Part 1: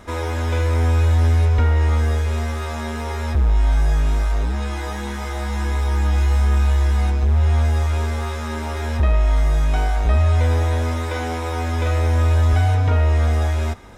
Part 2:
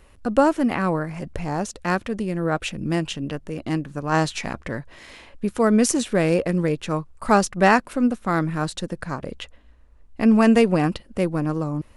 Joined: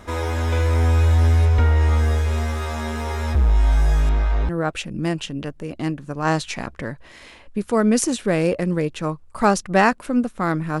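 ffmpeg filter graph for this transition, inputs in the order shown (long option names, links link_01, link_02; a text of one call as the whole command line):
ffmpeg -i cue0.wav -i cue1.wav -filter_complex "[0:a]asettb=1/sr,asplit=3[link_01][link_02][link_03];[link_01]atrim=end=4.094[link_04];[link_02]atrim=start=4.09:end=4.49,asetpts=PTS-STARTPTS,afade=type=in:duration=0.004:curve=qsin,afade=type=out:start_time=0.396:duration=0.004:curve=qsin,lowpass=3500[link_05];[link_03]atrim=start=4.486[link_06];[link_04][link_05]acrossfade=duration=0.004:curve1=hsin:curve2=qsin[link_07];[link_07][link_06]acrossfade=duration=0.004:curve1=qsin:curve2=hsin,apad=whole_dur=10.8,atrim=end=10.8,atrim=end=4.492[link_08];[1:a]atrim=start=2.358:end=8.67[link_09];[link_08][link_09]acrossfade=duration=0.004:curve1=hsin:curve2=hsin" out.wav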